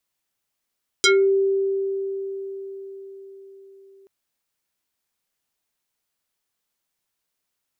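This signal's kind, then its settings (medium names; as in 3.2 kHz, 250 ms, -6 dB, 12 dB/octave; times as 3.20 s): FM tone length 3.03 s, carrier 390 Hz, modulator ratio 4.59, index 4.5, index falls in 0.25 s exponential, decay 4.98 s, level -12 dB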